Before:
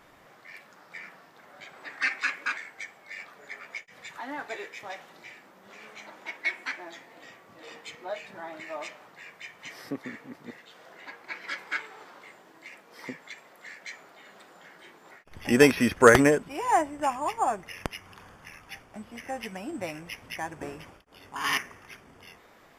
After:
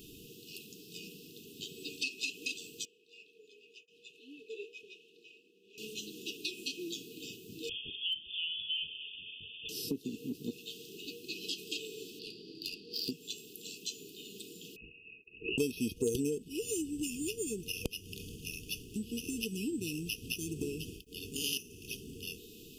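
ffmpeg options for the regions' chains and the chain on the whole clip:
-filter_complex "[0:a]asettb=1/sr,asplit=3[s0][s1][s2];[s0]atrim=end=2.854[s3];[s1]atrim=start=2.85:end=5.78,asetpts=PTS-STARTPTS,afade=t=in:d=0.004:c=qsin,afade=t=out:st=2.926:d=0.004:c=qsin,asplit=3[s4][s5][s6];[s4]bandpass=f=530:t=q:w=8,volume=1[s7];[s5]bandpass=f=1840:t=q:w=8,volume=0.501[s8];[s6]bandpass=f=2480:t=q:w=8,volume=0.355[s9];[s7][s8][s9]amix=inputs=3:normalize=0,highshelf=f=4800:g=5[s10];[s2]atrim=start=5.776[s11];[s3][s10]acrossfade=d=0.004:c1=hsin:c2=qsin[s12];[s12][s11]acrossfade=d=0.004:c1=qsin:c2=hsin,asettb=1/sr,asplit=3[s13][s14][s15];[s13]atrim=end=7.694[s16];[s14]atrim=start=7.69:end=9.69,asetpts=PTS-STARTPTS,afade=t=in:d=0.004:c=qsin,afade=t=out:st=1.996:d=0.004:c=qsin,lowpass=f=3100:t=q:w=0.5098,lowpass=f=3100:t=q:w=0.6013,lowpass=f=3100:t=q:w=0.9,lowpass=f=3100:t=q:w=2.563,afreqshift=-3700,asoftclip=type=hard:threshold=0.0562[s17];[s15]atrim=start=9.686[s18];[s16][s17]acrossfade=d=0.004:c1=hsin:c2=qsin[s19];[s19][s18]acrossfade=d=0.004:c1=qsin:c2=hsin,asettb=1/sr,asplit=3[s20][s21][s22];[s20]atrim=end=12.194[s23];[s21]atrim=start=12.19:end=13.11,asetpts=PTS-STARTPTS,afade=t=in:d=0.004:c=qsin,afade=t=out:st=0.916:d=0.004:c=qsin,lowpass=f=4700:t=q:w=15,adynamicsmooth=sensitivity=7.5:basefreq=2700[s24];[s22]atrim=start=13.106[s25];[s23][s24]acrossfade=d=0.004:c1=hsin:c2=qsin[s26];[s26][s25]acrossfade=d=0.004:c1=qsin:c2=hsin,asettb=1/sr,asplit=3[s27][s28][s29];[s27]atrim=end=14.764[s30];[s28]atrim=start=14.76:end=15.58,asetpts=PTS-STARTPTS,afade=t=in:d=0.004:c=qsin,afade=t=out:st=0.816:d=0.004:c=qsin,highpass=f=560:w=0.5412,highpass=f=560:w=1.3066,aemphasis=mode=production:type=75kf,lowpass=f=2700:t=q:w=0.5098,lowpass=f=2700:t=q:w=0.6013,lowpass=f=2700:t=q:w=0.9,lowpass=f=2700:t=q:w=2.563,afreqshift=-3200[s31];[s29]atrim=start=15.576[s32];[s30][s31]acrossfade=d=0.004:c1=hsin:c2=qsin[s33];[s33][s32]acrossfade=d=0.004:c1=qsin:c2=hsin,afftfilt=real='re*(1-between(b*sr/4096,480,2500))':imag='im*(1-between(b*sr/4096,480,2500))':win_size=4096:overlap=0.75,highshelf=f=11000:g=11.5,acompressor=threshold=0.00708:ratio=4,volume=2.66"

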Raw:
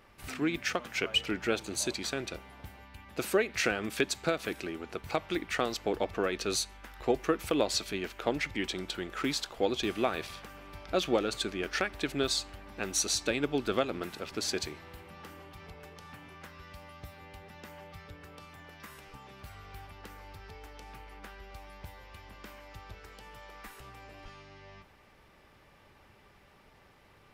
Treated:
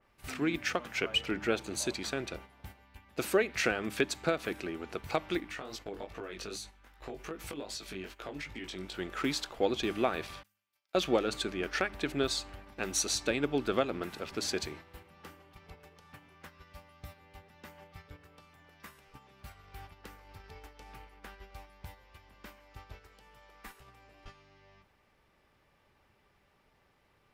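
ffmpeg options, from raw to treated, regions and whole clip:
-filter_complex "[0:a]asettb=1/sr,asplit=3[s0][s1][s2];[s0]atrim=end=5.404[s3];[s1]atrim=start=5.4:end=8.99,asetpts=PTS-STARTPTS,afade=t=in:d=0.004:c=qsin,afade=t=out:st=3.586:d=0.004:c=qsin,acompressor=threshold=0.0224:ratio=12:attack=3.2:release=140:knee=1:detection=peak,flanger=delay=17.5:depth=3.7:speed=2.5[s4];[s2]atrim=start=8.986[s5];[s3][s4]acrossfade=d=0.004:c1=hsin:c2=qsin[s6];[s6][s5]acrossfade=d=0.004:c1=qsin:c2=hsin,asettb=1/sr,asplit=3[s7][s8][s9];[s7]atrim=end=10.434[s10];[s8]atrim=start=10.43:end=10.95,asetpts=PTS-STARTPTS,afade=t=in:d=0.004:c=qsin,afade=t=out:st=0.516:d=0.004:c=qsin,aeval=exprs='val(0)+0.00251*(sin(2*PI*50*n/s)+sin(2*PI*2*50*n/s)/2+sin(2*PI*3*50*n/s)/3+sin(2*PI*4*50*n/s)/4+sin(2*PI*5*50*n/s)/5)':c=same,agate=range=0.0224:threshold=0.0126:ratio=3:release=100:detection=peak,aderivative[s11];[s9]atrim=start=10.946[s12];[s10][s11]acrossfade=d=0.004:c1=hsin:c2=qsin[s13];[s13][s12]acrossfade=d=0.004:c1=qsin:c2=hsin,bandreject=f=101.8:t=h:w=4,bandreject=f=203.6:t=h:w=4,bandreject=f=305.4:t=h:w=4,agate=range=0.355:threshold=0.00447:ratio=16:detection=peak,adynamicequalizer=threshold=0.00501:dfrequency=2800:dqfactor=0.7:tfrequency=2800:tqfactor=0.7:attack=5:release=100:ratio=0.375:range=2:mode=cutabove:tftype=highshelf"

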